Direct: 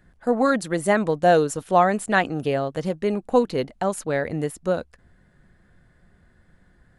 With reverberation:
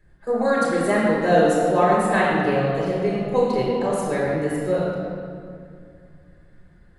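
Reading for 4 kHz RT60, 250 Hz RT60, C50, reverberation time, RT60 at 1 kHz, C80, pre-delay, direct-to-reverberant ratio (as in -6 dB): 1.5 s, 3.1 s, -1.5 dB, 2.3 s, 2.1 s, 0.0 dB, 5 ms, -5.5 dB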